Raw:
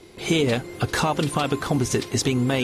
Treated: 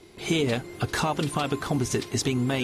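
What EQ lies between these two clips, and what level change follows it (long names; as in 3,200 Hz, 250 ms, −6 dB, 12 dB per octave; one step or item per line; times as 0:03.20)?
notch filter 510 Hz, Q 13
−3.5 dB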